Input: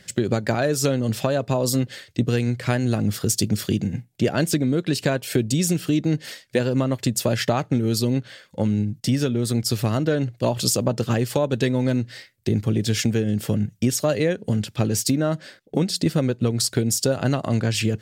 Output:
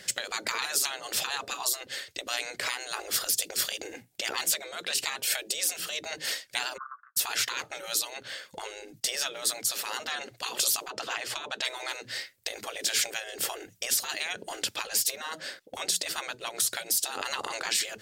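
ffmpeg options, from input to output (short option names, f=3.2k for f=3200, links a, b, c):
-filter_complex "[0:a]asplit=3[a][b][c];[a]afade=t=out:st=6.76:d=0.02[d];[b]asuperpass=centerf=1300:order=8:qfactor=3.2,afade=t=in:st=6.76:d=0.02,afade=t=out:st=7.16:d=0.02[e];[c]afade=t=in:st=7.16:d=0.02[f];[d][e][f]amix=inputs=3:normalize=0,asettb=1/sr,asplit=3[g][h][i];[g]atrim=end=10.904[j];[h]atrim=start=10.9:end=11.65,asetpts=PTS-STARTPTS,afade=t=in:d=0.004:c=qsin,afade=t=out:st=0.746:d=0.004:c=qsin,aemphasis=mode=reproduction:type=50fm[k];[i]atrim=start=11.646[l];[j][k]acrossfade=d=0.004:c1=hsin:c2=qsin[m];[m][l]acrossfade=d=0.004:c1=qsin:c2=hsin,afftfilt=real='re*lt(hypot(re,im),0.1)':imag='im*lt(hypot(re,im),0.1)':win_size=1024:overlap=0.75,bass=f=250:g=-13,treble=f=4k:g=3,alimiter=limit=-18dB:level=0:latency=1:release=463,volume=4dB"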